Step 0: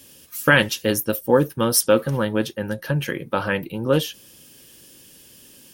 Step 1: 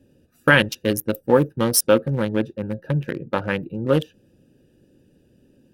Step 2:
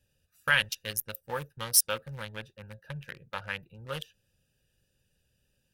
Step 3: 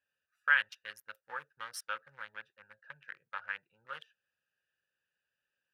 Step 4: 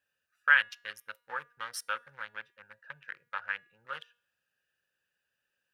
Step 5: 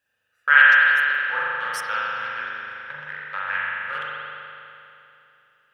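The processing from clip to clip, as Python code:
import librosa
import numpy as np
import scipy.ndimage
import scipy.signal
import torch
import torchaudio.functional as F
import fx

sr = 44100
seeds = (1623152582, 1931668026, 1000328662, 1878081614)

y1 = fx.wiener(x, sr, points=41)
y1 = y1 * librosa.db_to_amplitude(1.0)
y2 = fx.tone_stack(y1, sr, knobs='10-0-10')
y2 = y2 * librosa.db_to_amplitude(-2.5)
y3 = fx.bandpass_q(y2, sr, hz=1500.0, q=2.3)
y4 = fx.comb_fb(y3, sr, f0_hz=240.0, decay_s=0.6, harmonics='all', damping=0.0, mix_pct=30)
y4 = y4 * librosa.db_to_amplitude(7.0)
y5 = fx.rev_spring(y4, sr, rt60_s=2.9, pass_ms=(40,), chirp_ms=65, drr_db=-7.5)
y5 = y5 * librosa.db_to_amplitude(4.0)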